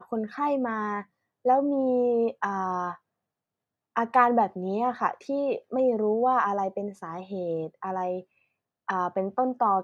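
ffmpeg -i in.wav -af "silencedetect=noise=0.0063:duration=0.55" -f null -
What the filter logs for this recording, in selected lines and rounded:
silence_start: 2.96
silence_end: 3.96 | silence_duration: 1.00
silence_start: 8.22
silence_end: 8.88 | silence_duration: 0.66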